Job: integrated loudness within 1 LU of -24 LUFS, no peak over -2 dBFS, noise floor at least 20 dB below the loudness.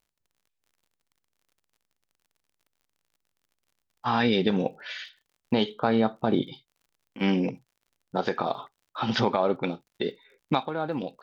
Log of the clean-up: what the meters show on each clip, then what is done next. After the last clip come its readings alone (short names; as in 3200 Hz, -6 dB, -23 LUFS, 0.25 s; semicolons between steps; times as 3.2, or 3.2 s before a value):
ticks 48/s; loudness -27.5 LUFS; peak -9.5 dBFS; loudness target -24.0 LUFS
-> de-click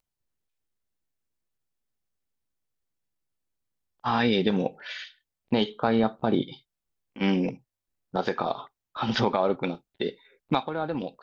ticks 0.18/s; loudness -28.0 LUFS; peak -9.5 dBFS; loudness target -24.0 LUFS
-> gain +4 dB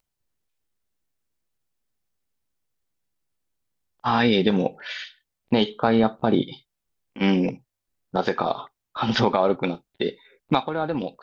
loudness -24.0 LUFS; peak -5.5 dBFS; noise floor -83 dBFS